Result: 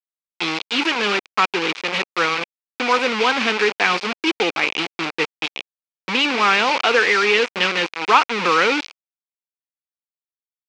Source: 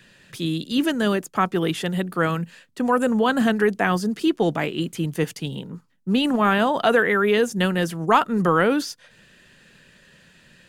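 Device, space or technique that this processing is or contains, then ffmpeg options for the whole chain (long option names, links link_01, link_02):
hand-held game console: -af "acrusher=bits=3:mix=0:aa=0.000001,highpass=460,equalizer=frequency=640:width_type=q:width=4:gain=-10,equalizer=frequency=1700:width_type=q:width=4:gain=-3,equalizer=frequency=2400:width_type=q:width=4:gain=9,lowpass=frequency=5100:width=0.5412,lowpass=frequency=5100:width=1.3066,volume=4.5dB"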